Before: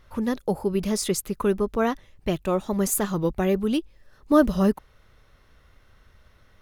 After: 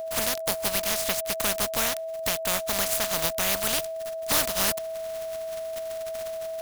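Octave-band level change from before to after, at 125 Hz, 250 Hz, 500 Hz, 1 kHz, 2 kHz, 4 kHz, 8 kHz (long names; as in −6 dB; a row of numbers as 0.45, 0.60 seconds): −11.5, −16.0, −3.0, −1.5, +5.5, +10.0, +6.0 decibels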